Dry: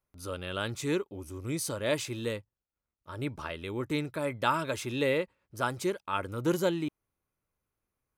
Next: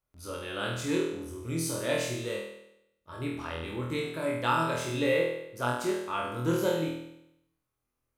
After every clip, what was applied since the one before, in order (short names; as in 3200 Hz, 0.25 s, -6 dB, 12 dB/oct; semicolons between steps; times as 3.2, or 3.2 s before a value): flutter echo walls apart 4.2 m, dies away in 0.8 s; gain -3.5 dB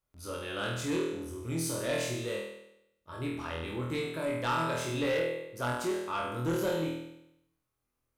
soft clip -24.5 dBFS, distortion -14 dB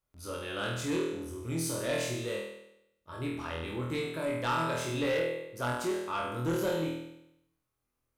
nothing audible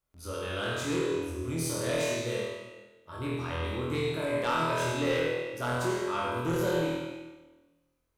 reverb RT60 1.2 s, pre-delay 52 ms, DRR 0 dB